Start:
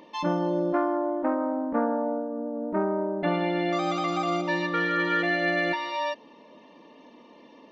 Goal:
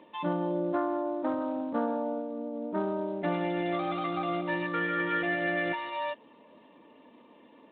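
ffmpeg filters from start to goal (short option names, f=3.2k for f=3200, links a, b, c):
-af "volume=-4.5dB" -ar 8000 -c:a libspeex -b:a 24k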